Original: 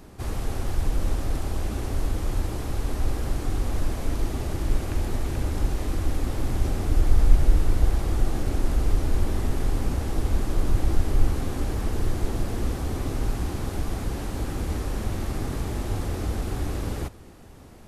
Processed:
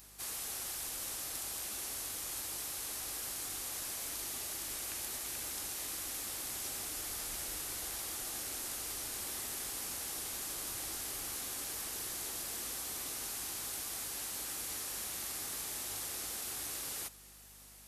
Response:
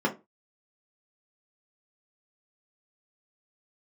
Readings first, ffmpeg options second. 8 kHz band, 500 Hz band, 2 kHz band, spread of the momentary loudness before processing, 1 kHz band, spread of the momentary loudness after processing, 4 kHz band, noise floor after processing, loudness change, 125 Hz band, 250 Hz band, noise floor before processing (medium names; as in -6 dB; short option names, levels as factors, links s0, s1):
+6.0 dB, -18.0 dB, -6.0 dB, 6 LU, -12.0 dB, 0 LU, +0.5 dB, -56 dBFS, -9.5 dB, -31.5 dB, -22.5 dB, -45 dBFS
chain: -af "aderivative,aeval=exprs='val(0)+0.000398*(sin(2*PI*50*n/s)+sin(2*PI*2*50*n/s)/2+sin(2*PI*3*50*n/s)/3+sin(2*PI*4*50*n/s)/4+sin(2*PI*5*50*n/s)/5)':c=same,volume=1.88"